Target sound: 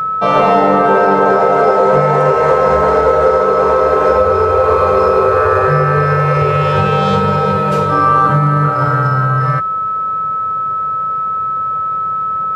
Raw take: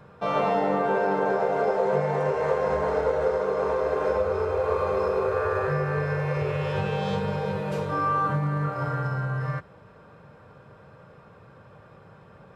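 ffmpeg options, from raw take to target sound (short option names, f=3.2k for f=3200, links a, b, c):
-af "apsyclip=16.5dB,aeval=exprs='val(0)+0.282*sin(2*PI*1300*n/s)':c=same,volume=-3.5dB"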